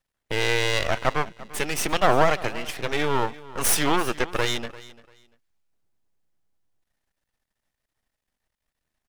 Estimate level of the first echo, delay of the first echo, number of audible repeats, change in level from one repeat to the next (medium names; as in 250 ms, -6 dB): -19.0 dB, 344 ms, 2, -13.0 dB